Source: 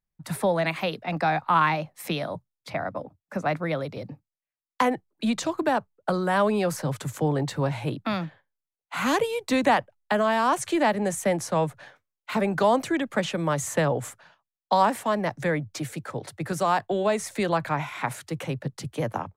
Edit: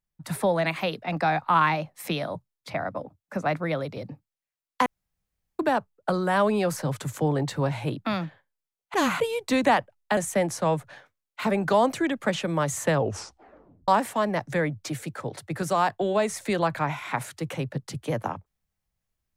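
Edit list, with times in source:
4.86–5.59 room tone
8.94–9.2 reverse
10.17–11.07 cut
13.86 tape stop 0.92 s

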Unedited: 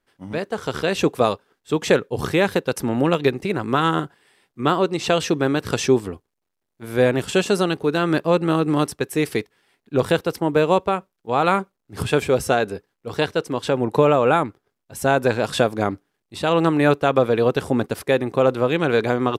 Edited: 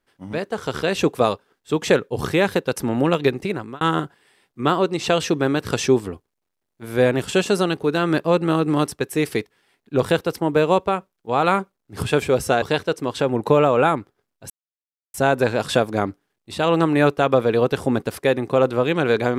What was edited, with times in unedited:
3.45–3.81 fade out
12.62–13.1 cut
14.98 insert silence 0.64 s

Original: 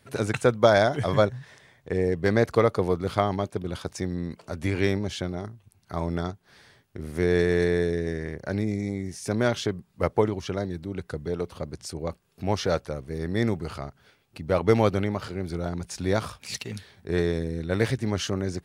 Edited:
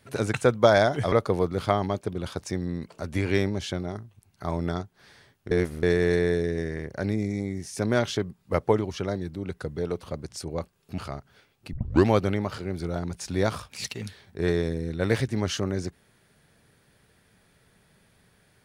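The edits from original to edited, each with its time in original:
1.12–2.61 cut
7–7.32 reverse
12.47–13.68 cut
14.43 tape start 0.34 s

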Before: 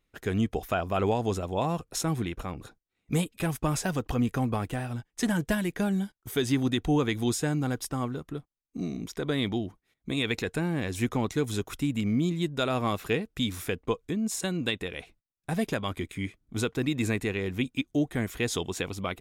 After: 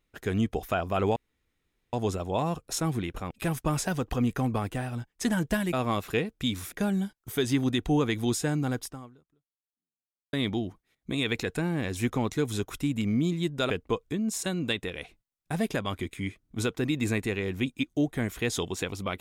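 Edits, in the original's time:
1.16 insert room tone 0.77 s
2.54–3.29 cut
7.8–9.32 fade out exponential
12.69–13.68 move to 5.71

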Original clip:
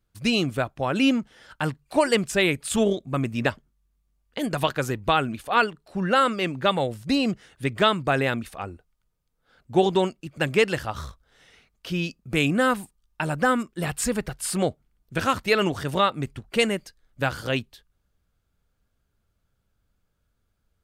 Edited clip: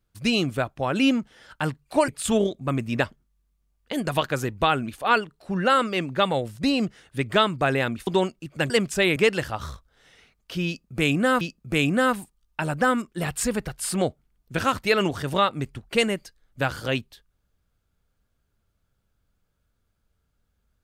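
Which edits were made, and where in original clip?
2.08–2.54 move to 10.51
8.53–9.88 cut
12.02–12.76 loop, 2 plays

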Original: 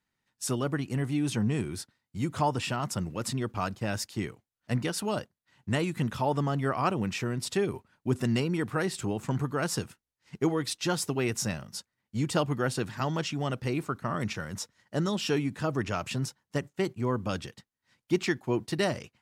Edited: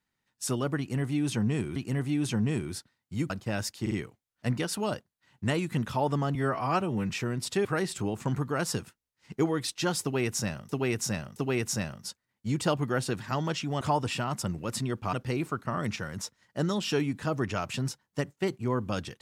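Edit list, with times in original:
0.79–1.76 loop, 2 plays
2.33–3.65 move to 13.5
4.16 stutter 0.05 s, 3 plays
6.6–7.1 stretch 1.5×
7.65–8.68 cut
11.05–11.72 loop, 3 plays

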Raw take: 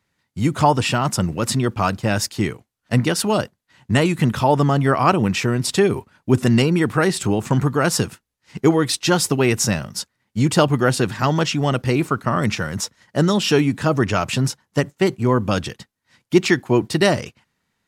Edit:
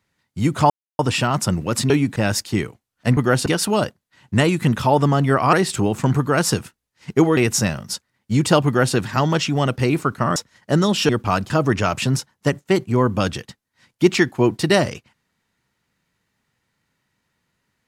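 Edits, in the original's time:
0.7 insert silence 0.29 s
1.61–2.02 swap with 13.55–13.81
5.1–7 cut
8.84–9.43 cut
10.72–11.01 copy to 3.03
12.42–12.82 cut

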